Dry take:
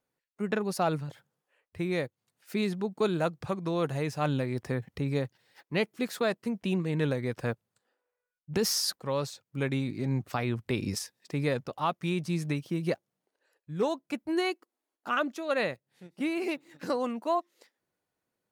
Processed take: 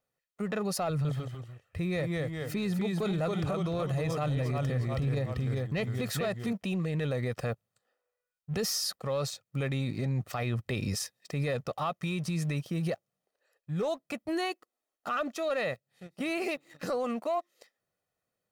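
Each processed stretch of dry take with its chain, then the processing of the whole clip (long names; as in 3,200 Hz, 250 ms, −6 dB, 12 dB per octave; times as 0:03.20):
0:00.90–0:06.53: low-shelf EQ 170 Hz +8 dB + delay with pitch and tempo change per echo 148 ms, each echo −1 semitone, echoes 3, each echo −6 dB
whole clip: comb filter 1.6 ms, depth 49%; leveller curve on the samples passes 1; brickwall limiter −24 dBFS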